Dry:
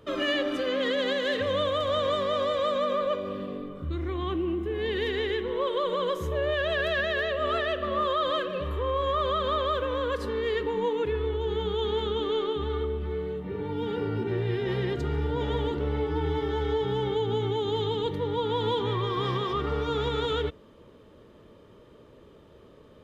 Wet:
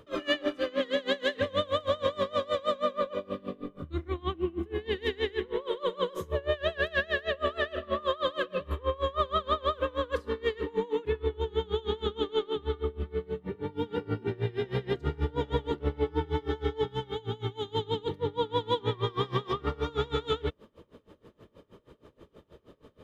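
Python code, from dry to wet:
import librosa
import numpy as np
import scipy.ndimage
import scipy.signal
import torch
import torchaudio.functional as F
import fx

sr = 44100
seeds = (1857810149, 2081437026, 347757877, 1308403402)

y = fx.peak_eq(x, sr, hz=370.0, db=-6.0, octaves=2.4, at=(16.88, 17.75))
y = y * 10.0 ** (-25 * (0.5 - 0.5 * np.cos(2.0 * np.pi * 6.3 * np.arange(len(y)) / sr)) / 20.0)
y = y * 10.0 ** (3.0 / 20.0)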